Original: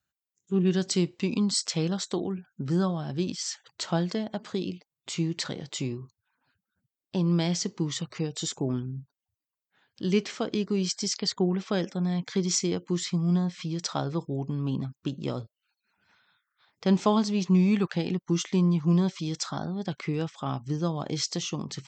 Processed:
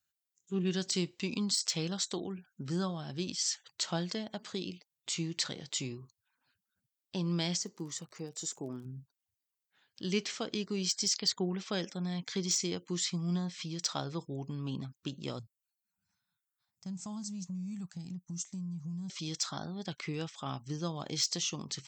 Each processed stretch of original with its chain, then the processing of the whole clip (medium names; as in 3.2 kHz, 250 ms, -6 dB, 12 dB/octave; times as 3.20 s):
7.56–8.84 s: high-pass 270 Hz 6 dB/octave + peaking EQ 3.2 kHz -14 dB 1.6 oct + crackle 57 per s -47 dBFS
15.39–19.10 s: FFT filter 180 Hz 0 dB, 320 Hz -16 dB, 470 Hz -27 dB, 700 Hz -13 dB, 3.3 kHz -23 dB, 7.4 kHz 0 dB + compression 5:1, threshold -29 dBFS
whole clip: de-esser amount 55%; treble shelf 2.1 kHz +11 dB; trim -8.5 dB